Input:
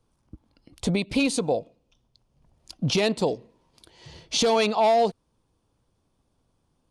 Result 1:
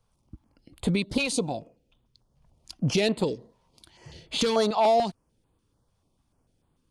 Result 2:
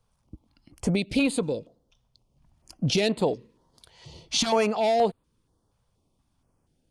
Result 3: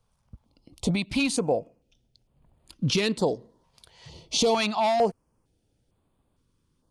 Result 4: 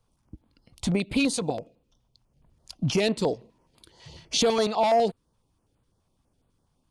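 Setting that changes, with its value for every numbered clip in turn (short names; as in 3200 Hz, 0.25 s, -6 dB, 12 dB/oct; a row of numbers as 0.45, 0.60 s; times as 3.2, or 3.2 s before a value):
stepped notch, rate: 6.8, 4.2, 2.2, 12 Hz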